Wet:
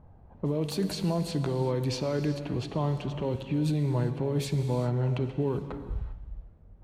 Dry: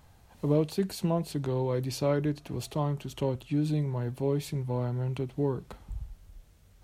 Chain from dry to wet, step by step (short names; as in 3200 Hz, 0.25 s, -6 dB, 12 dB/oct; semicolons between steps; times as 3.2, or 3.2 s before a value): low-pass opened by the level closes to 670 Hz, open at -25 dBFS; limiter -25.5 dBFS, peak gain reduction 11.5 dB; non-linear reverb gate 0.42 s flat, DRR 8.5 dB; gain +5 dB